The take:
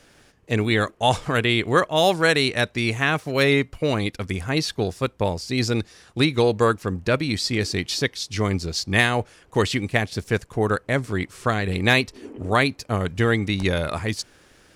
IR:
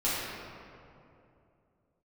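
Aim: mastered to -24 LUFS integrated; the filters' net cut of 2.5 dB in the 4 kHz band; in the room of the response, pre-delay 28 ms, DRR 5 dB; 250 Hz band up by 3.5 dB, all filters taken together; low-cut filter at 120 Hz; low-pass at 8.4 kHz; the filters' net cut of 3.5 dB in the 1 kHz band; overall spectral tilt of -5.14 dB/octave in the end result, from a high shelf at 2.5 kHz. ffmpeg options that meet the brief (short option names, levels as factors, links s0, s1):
-filter_complex "[0:a]highpass=120,lowpass=8400,equalizer=f=250:t=o:g=5,equalizer=f=1000:t=o:g=-6,highshelf=f=2500:g=7,equalizer=f=4000:t=o:g=-8.5,asplit=2[s0][s1];[1:a]atrim=start_sample=2205,adelay=28[s2];[s1][s2]afir=irnorm=-1:irlink=0,volume=0.168[s3];[s0][s3]amix=inputs=2:normalize=0,volume=0.708"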